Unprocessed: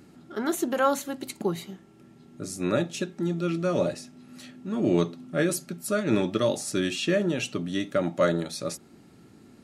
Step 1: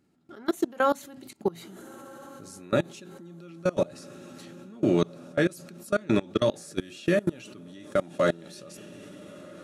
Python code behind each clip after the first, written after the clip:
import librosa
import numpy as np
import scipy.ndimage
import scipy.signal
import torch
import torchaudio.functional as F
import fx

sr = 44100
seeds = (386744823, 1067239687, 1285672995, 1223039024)

y = fx.echo_diffused(x, sr, ms=1409, feedback_pct=51, wet_db=-15.0)
y = fx.level_steps(y, sr, step_db=24)
y = F.gain(torch.from_numpy(y), 3.0).numpy()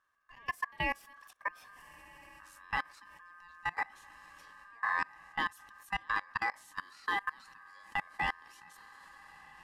y = fx.dynamic_eq(x, sr, hz=6100.0, q=1.3, threshold_db=-56.0, ratio=4.0, max_db=-5)
y = y * np.sin(2.0 * np.pi * 1400.0 * np.arange(len(y)) / sr)
y = F.gain(torch.from_numpy(y), -7.0).numpy()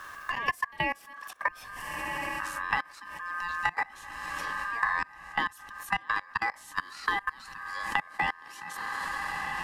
y = fx.band_squash(x, sr, depth_pct=100)
y = F.gain(torch.from_numpy(y), 5.0).numpy()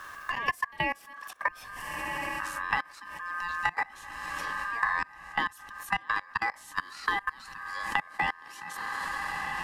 y = x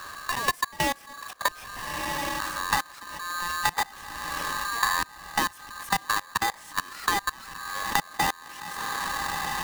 y = fx.halfwave_hold(x, sr)